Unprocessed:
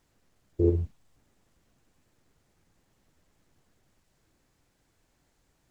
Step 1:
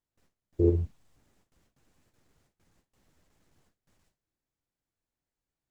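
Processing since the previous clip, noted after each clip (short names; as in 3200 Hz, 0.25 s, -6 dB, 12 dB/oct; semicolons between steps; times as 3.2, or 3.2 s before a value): gate with hold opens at -58 dBFS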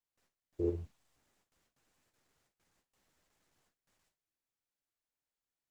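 low shelf 390 Hz -11.5 dB; gain -3 dB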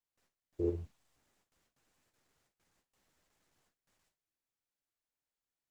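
nothing audible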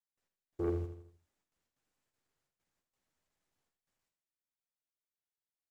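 sample leveller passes 2; on a send: feedback echo 81 ms, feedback 46%, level -9 dB; on the sum: gain -6 dB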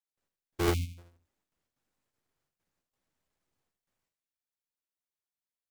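half-waves squared off; spectral delete 0.74–0.98, 320–2100 Hz; upward expander 1.5:1, over -43 dBFS; gain +4.5 dB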